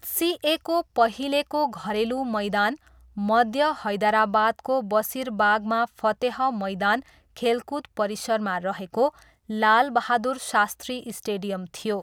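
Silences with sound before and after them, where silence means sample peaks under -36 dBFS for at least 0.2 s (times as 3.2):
2.75–3.17
7–7.37
9.22–9.5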